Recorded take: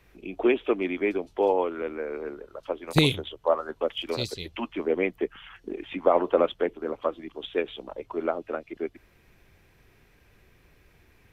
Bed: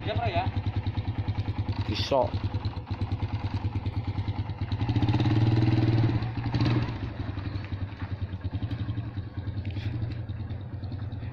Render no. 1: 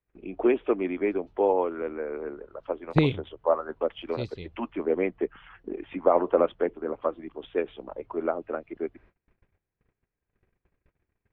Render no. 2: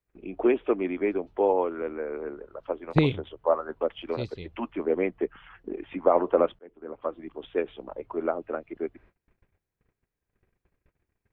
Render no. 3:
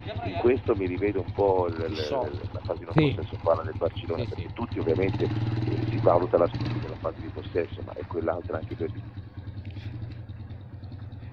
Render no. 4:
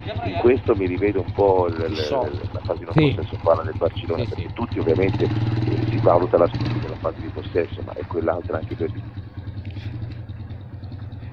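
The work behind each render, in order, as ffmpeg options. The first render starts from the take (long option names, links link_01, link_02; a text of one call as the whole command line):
ffmpeg -i in.wav -af "lowpass=1800,agate=range=-27dB:threshold=-55dB:ratio=16:detection=peak" out.wav
ffmpeg -i in.wav -filter_complex "[0:a]asplit=2[link_01][link_02];[link_01]atrim=end=6.59,asetpts=PTS-STARTPTS,afade=type=out:start_time=6.586:duration=0.004:curve=hsin[link_03];[link_02]atrim=start=6.59,asetpts=PTS-STARTPTS,afade=type=in:duration=0.71[link_04];[link_03][link_04]concat=n=2:v=0:a=1" out.wav
ffmpeg -i in.wav -i bed.wav -filter_complex "[1:a]volume=-5dB[link_01];[0:a][link_01]amix=inputs=2:normalize=0" out.wav
ffmpeg -i in.wav -af "volume=6dB,alimiter=limit=-3dB:level=0:latency=1" out.wav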